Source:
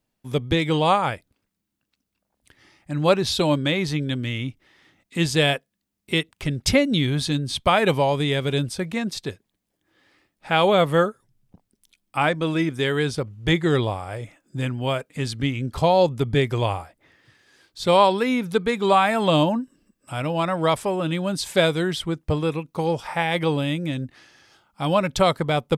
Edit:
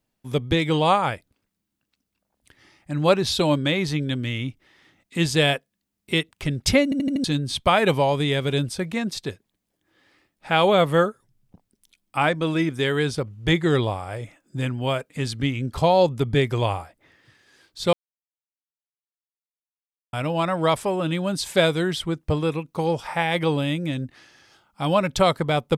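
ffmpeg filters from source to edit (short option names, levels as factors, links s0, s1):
-filter_complex "[0:a]asplit=8[s0][s1][s2][s3][s4][s5][s6][s7];[s0]atrim=end=6.922[s8];[s1]atrim=start=6.838:end=6.922[s9];[s2]atrim=start=6.838:end=6.922[s10];[s3]atrim=start=6.838:end=6.922[s11];[s4]atrim=start=6.838:end=6.922[s12];[s5]atrim=start=7.238:end=17.93,asetpts=PTS-STARTPTS,afade=t=out:st=10.688:d=0.004:c=hsin[s13];[s6]atrim=start=17.93:end=20.13,asetpts=PTS-STARTPTS,volume=0[s14];[s7]atrim=start=20.13,asetpts=PTS-STARTPTS,afade=t=in:d=0.004:c=hsin[s15];[s8][s9]acrossfade=d=0.004:c1=hsin:c2=hsin[s16];[s16][s10]acrossfade=d=0.004:c1=hsin:c2=hsin[s17];[s17][s11]acrossfade=d=0.004:c1=hsin:c2=hsin[s18];[s18][s12]acrossfade=d=0.004:c1=hsin:c2=hsin[s19];[s13][s14][s15]concat=n=3:v=0:a=1[s20];[s19][s20]acrossfade=d=0.004:c1=hsin:c2=hsin"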